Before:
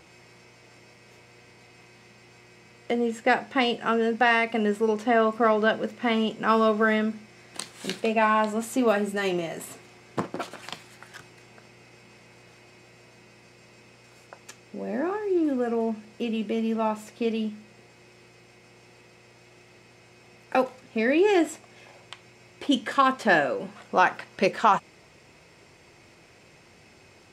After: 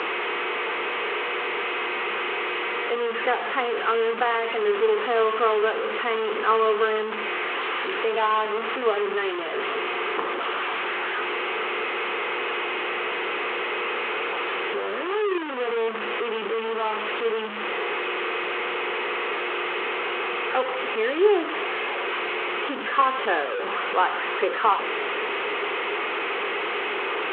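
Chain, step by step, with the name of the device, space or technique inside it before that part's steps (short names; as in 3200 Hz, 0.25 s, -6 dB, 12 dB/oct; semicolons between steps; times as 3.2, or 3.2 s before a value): treble ducked by the level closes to 1300 Hz, closed at -17.5 dBFS; digital answering machine (BPF 340–3200 Hz; delta modulation 16 kbps, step -22 dBFS; speaker cabinet 410–4400 Hz, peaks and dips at 420 Hz +10 dB, 620 Hz -7 dB, 1200 Hz +6 dB, 3000 Hz +4 dB)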